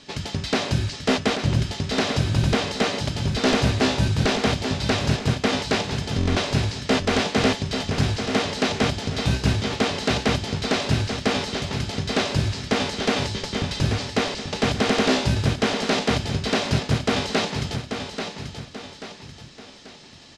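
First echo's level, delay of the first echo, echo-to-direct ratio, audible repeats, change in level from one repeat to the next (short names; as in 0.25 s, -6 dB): -7.5 dB, 0.836 s, -6.5 dB, 3, -7.5 dB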